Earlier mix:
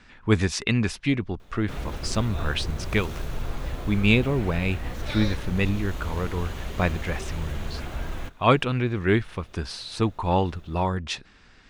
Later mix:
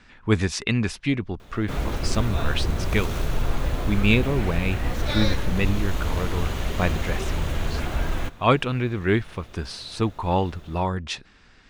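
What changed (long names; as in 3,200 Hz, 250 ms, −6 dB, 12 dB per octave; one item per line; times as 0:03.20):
background +5.5 dB
reverb: on, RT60 2.5 s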